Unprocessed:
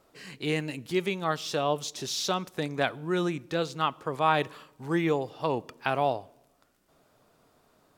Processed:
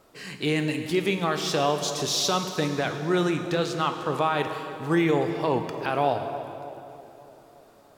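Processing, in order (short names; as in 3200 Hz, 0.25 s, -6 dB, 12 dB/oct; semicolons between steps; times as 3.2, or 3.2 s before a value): limiter -19 dBFS, peak gain reduction 9 dB; on a send: tape echo 0.302 s, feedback 68%, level -12 dB, low-pass 1400 Hz; on the sum: plate-style reverb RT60 2.6 s, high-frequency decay 0.9×, DRR 6.5 dB; gain +5.5 dB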